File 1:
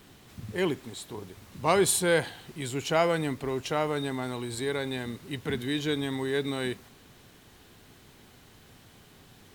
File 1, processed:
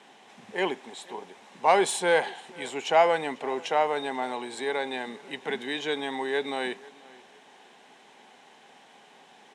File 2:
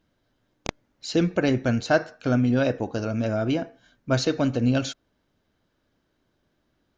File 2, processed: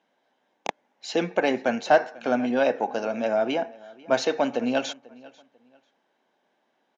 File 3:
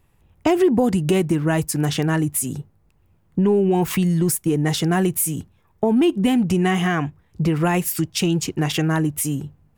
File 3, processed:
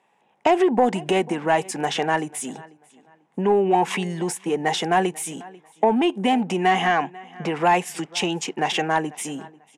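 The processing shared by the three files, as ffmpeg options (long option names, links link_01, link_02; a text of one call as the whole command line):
ffmpeg -i in.wav -filter_complex "[0:a]highpass=frequency=210:width=0.5412,highpass=frequency=210:width=1.3066,equalizer=frequency=310:width_type=q:width=4:gain=-7,equalizer=frequency=820:width_type=q:width=4:gain=8,equalizer=frequency=1300:width_type=q:width=4:gain=-7,equalizer=frequency=4500:width_type=q:width=4:gain=-6,lowpass=frequency=9700:width=0.5412,lowpass=frequency=9700:width=1.3066,asplit=2[link_01][link_02];[link_02]adelay=492,lowpass=frequency=5000:poles=1,volume=-22.5dB,asplit=2[link_03][link_04];[link_04]adelay=492,lowpass=frequency=5000:poles=1,volume=0.26[link_05];[link_01][link_03][link_05]amix=inputs=3:normalize=0,asplit=2[link_06][link_07];[link_07]highpass=frequency=720:poles=1,volume=11dB,asoftclip=type=tanh:threshold=-6.5dB[link_08];[link_06][link_08]amix=inputs=2:normalize=0,lowpass=frequency=2500:poles=1,volume=-6dB" out.wav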